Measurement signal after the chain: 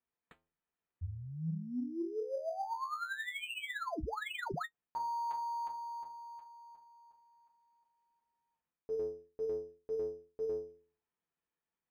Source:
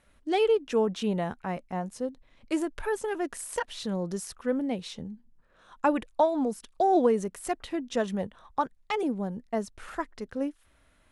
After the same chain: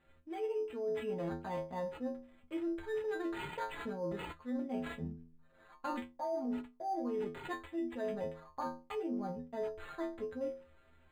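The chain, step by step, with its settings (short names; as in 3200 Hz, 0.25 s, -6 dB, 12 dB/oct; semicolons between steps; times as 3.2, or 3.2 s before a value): metallic resonator 79 Hz, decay 0.56 s, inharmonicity 0.008; reverse; compressor 12:1, threshold -44 dBFS; reverse; decimation joined by straight lines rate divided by 8×; gain +10 dB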